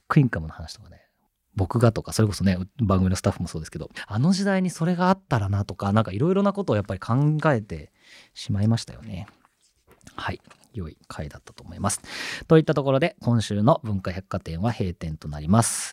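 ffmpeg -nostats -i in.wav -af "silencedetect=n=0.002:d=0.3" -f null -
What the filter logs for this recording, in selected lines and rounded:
silence_start: 1.05
silence_end: 1.54 | silence_duration: 0.49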